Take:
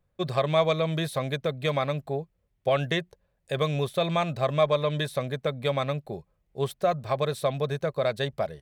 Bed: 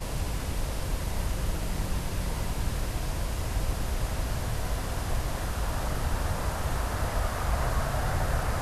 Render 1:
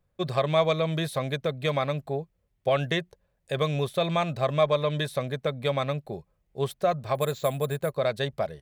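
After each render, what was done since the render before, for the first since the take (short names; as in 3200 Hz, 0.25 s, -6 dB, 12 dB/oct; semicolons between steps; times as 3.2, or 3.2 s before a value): 7.15–7.92 careless resampling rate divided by 4×, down filtered, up hold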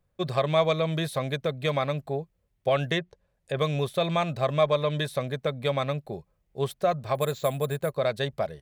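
2.98–3.57 treble ducked by the level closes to 2300 Hz, closed at -29.5 dBFS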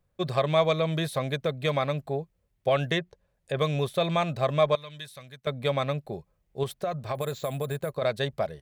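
4.75–5.47 passive tone stack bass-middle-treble 5-5-5; 6.63–8.02 compressor, threshold -25 dBFS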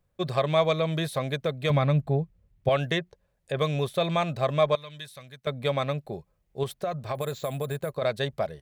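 1.7–2.69 tone controls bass +11 dB, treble -5 dB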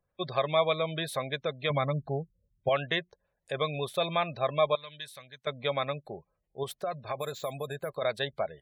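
spectral gate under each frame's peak -30 dB strong; low shelf 390 Hz -10.5 dB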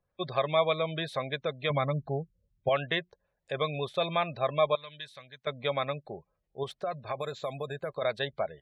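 LPF 4900 Hz 12 dB/oct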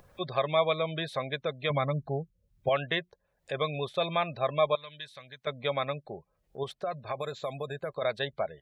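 upward compressor, threshold -41 dBFS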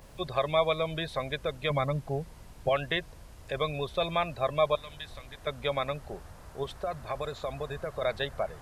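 add bed -19 dB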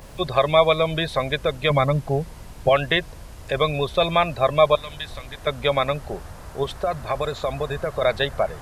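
gain +9.5 dB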